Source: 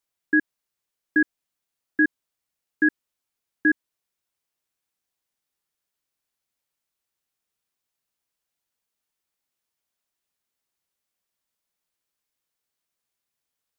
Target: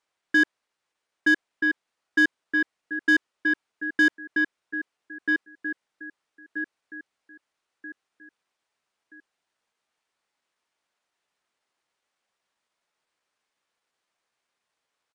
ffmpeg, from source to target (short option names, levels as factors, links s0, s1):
-filter_complex "[0:a]asplit=2[s0][s1];[s1]aecho=0:1:1165|2330|3495|4660:0.355|0.114|0.0363|0.0116[s2];[s0][s2]amix=inputs=2:normalize=0,atempo=0.91,aresample=22050,aresample=44100,asplit=2[s3][s4];[s4]highpass=f=720:p=1,volume=7.94,asoftclip=type=tanh:threshold=0.316[s5];[s3][s5]amix=inputs=2:normalize=0,lowpass=f=1500:p=1,volume=0.501"